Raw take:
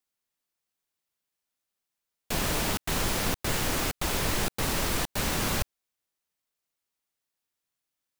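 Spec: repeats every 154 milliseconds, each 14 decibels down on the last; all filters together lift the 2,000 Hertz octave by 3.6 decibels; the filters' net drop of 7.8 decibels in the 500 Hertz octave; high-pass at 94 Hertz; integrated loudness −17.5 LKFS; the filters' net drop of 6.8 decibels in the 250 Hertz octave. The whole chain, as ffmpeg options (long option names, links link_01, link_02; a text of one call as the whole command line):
ffmpeg -i in.wav -af "highpass=94,equalizer=frequency=250:width_type=o:gain=-7,equalizer=frequency=500:width_type=o:gain=-8.5,equalizer=frequency=2000:width_type=o:gain=5,aecho=1:1:154|308:0.2|0.0399,volume=10.5dB" out.wav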